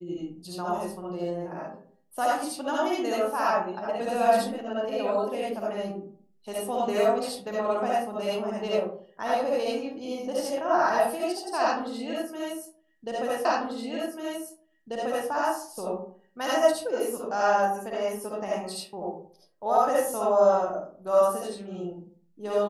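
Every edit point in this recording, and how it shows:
13.45 s: repeat of the last 1.84 s

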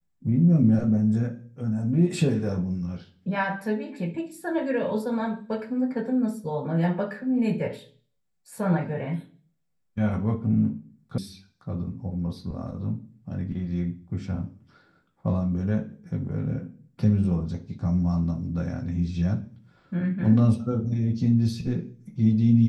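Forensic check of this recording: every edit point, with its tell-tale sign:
11.18 s: sound stops dead

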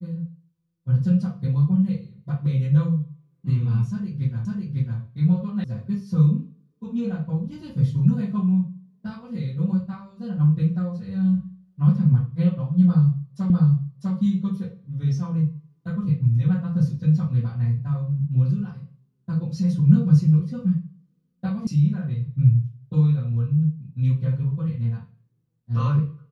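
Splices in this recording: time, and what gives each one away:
4.45 s: repeat of the last 0.55 s
5.64 s: sound stops dead
13.50 s: repeat of the last 0.65 s
21.67 s: sound stops dead

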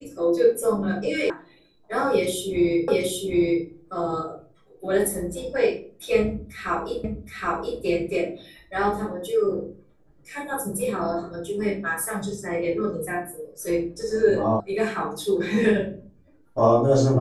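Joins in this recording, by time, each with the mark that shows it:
1.30 s: sound stops dead
2.88 s: repeat of the last 0.77 s
7.04 s: repeat of the last 0.77 s
14.60 s: sound stops dead

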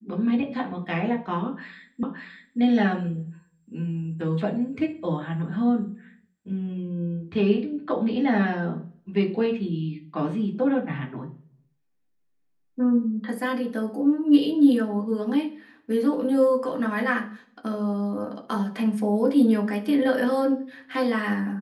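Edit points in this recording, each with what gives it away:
2.03 s: repeat of the last 0.57 s

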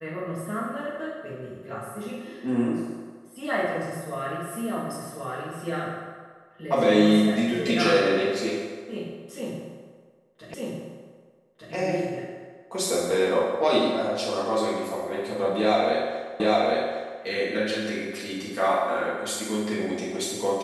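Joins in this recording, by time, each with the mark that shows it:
10.54 s: repeat of the last 1.2 s
16.40 s: repeat of the last 0.81 s

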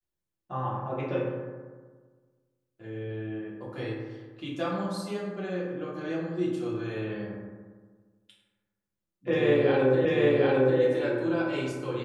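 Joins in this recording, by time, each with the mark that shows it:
10.05 s: repeat of the last 0.75 s

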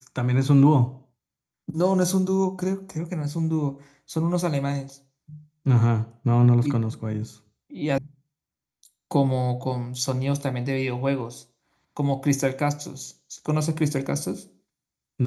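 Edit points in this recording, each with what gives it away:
7.98 s: sound stops dead

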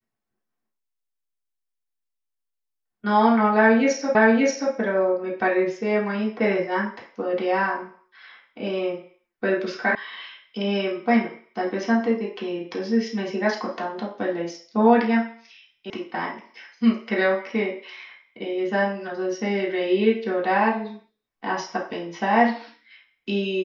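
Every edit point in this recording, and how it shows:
4.15 s: repeat of the last 0.58 s
9.95 s: sound stops dead
15.90 s: sound stops dead

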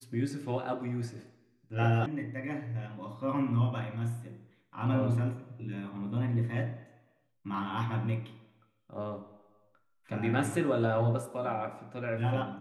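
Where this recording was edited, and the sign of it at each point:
2.06 s: sound stops dead

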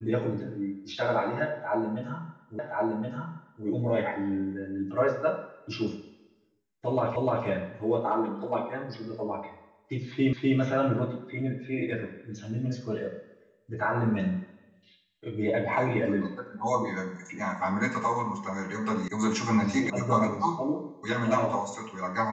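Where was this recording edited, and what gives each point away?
2.59 s: repeat of the last 1.07 s
7.16 s: repeat of the last 0.3 s
10.33 s: repeat of the last 0.25 s
19.08 s: sound stops dead
19.90 s: sound stops dead

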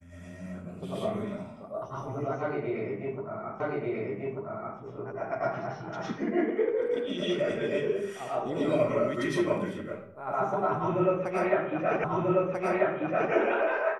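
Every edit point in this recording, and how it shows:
3.60 s: repeat of the last 1.19 s
12.04 s: repeat of the last 1.29 s

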